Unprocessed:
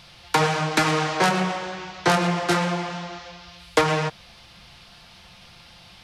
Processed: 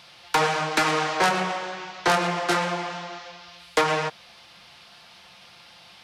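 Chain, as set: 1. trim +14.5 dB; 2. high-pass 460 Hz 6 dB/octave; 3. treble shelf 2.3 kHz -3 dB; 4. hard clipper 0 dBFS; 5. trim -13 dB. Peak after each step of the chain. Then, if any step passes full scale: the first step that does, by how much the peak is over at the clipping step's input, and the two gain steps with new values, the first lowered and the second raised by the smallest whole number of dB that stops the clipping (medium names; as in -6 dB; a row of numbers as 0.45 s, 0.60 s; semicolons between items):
+9.0 dBFS, +8.0 dBFS, +7.5 dBFS, 0.0 dBFS, -13.0 dBFS; step 1, 7.5 dB; step 1 +6.5 dB, step 5 -5 dB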